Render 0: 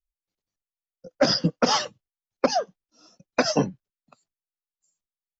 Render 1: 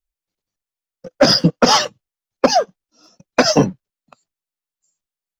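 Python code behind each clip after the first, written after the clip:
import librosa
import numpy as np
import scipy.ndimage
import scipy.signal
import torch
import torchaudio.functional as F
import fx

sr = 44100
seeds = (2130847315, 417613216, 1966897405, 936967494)

y = fx.leveller(x, sr, passes=1)
y = F.gain(torch.from_numpy(y), 6.0).numpy()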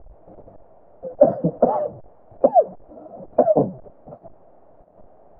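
y = x + 0.5 * 10.0 ** (-25.5 / 20.0) * np.sign(x)
y = fx.ladder_lowpass(y, sr, hz=720.0, resonance_pct=65)
y = F.gain(torch.from_numpy(y), 2.0).numpy()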